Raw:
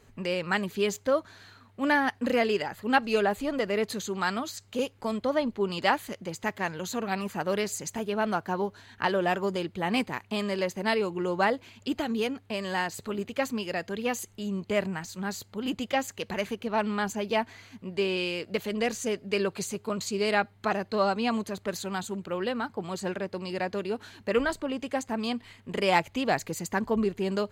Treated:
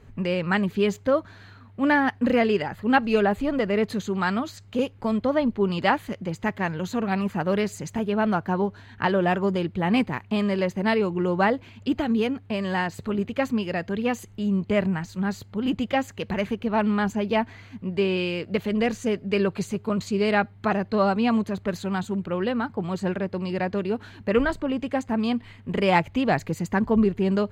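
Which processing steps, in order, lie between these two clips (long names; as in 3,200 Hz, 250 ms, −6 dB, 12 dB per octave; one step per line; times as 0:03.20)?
bass and treble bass +8 dB, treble −10 dB
level +3 dB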